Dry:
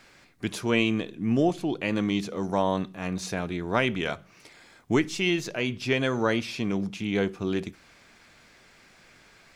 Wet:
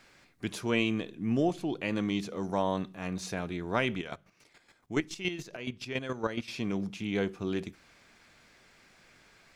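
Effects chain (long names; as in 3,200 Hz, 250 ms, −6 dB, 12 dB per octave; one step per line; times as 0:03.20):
0:03.98–0:06.48: square-wave tremolo 7.1 Hz, depth 65%, duty 25%
level −4.5 dB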